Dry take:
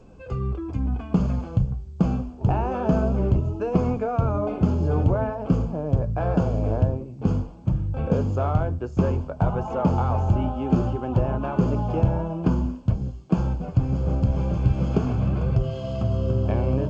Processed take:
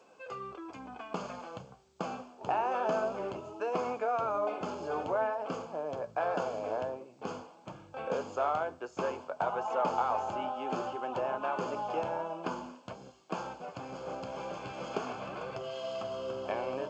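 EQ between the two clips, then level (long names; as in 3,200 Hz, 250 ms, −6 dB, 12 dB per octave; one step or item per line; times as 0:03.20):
high-pass filter 680 Hz 12 dB per octave
0.0 dB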